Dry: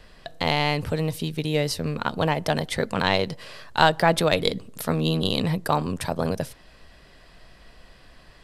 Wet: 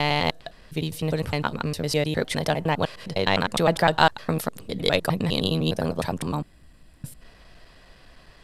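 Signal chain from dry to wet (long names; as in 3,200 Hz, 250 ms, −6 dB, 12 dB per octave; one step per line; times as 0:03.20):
slices reordered back to front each 102 ms, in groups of 7
gain on a spectral selection 0:06.32–0:07.22, 360–7,000 Hz −9 dB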